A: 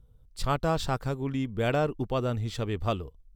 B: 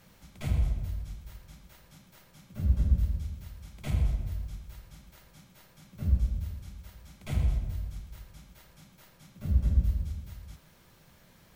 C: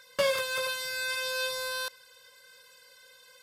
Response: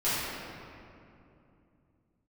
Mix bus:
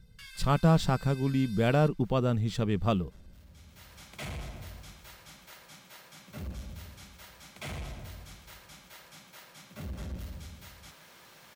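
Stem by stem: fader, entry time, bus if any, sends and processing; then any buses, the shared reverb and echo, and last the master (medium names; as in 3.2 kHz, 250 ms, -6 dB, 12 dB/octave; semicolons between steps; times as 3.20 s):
-0.5 dB, 0.00 s, no send, peaking EQ 180 Hz +13.5 dB 0.52 oct
-16.5 dB, 0.35 s, no send, overdrive pedal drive 32 dB, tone 7 kHz, clips at -12.5 dBFS; auto duck -17 dB, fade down 0.85 s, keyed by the first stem
-17.0 dB, 0.00 s, no send, steep high-pass 1.4 kHz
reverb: none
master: none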